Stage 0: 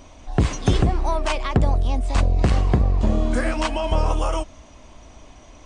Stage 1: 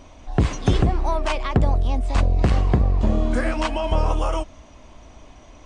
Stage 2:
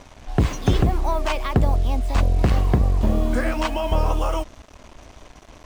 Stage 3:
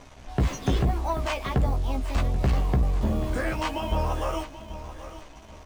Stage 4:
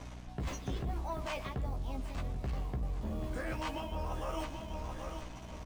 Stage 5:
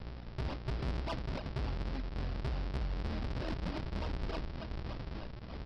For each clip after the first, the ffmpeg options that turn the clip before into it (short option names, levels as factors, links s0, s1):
-af "highshelf=f=6200:g=-7"
-af "acrusher=bits=6:mix=0:aa=0.5"
-filter_complex "[0:a]asplit=2[s0][s1];[s1]adelay=15,volume=0.708[s2];[s0][s2]amix=inputs=2:normalize=0,aecho=1:1:784|1568|2352:0.2|0.0638|0.0204,asoftclip=type=tanh:threshold=0.335,volume=0.562"
-af "areverse,acompressor=threshold=0.02:ratio=5,areverse,aeval=exprs='val(0)+0.00562*(sin(2*PI*60*n/s)+sin(2*PI*2*60*n/s)/2+sin(2*PI*3*60*n/s)/3+sin(2*PI*4*60*n/s)/4+sin(2*PI*5*60*n/s)/5)':c=same,aecho=1:1:122:0.15,volume=0.841"
-af "aresample=11025,acrusher=samples=26:mix=1:aa=0.000001:lfo=1:lforange=41.6:lforate=3.4,aresample=44100,asoftclip=type=tanh:threshold=0.0316,volume=1.19"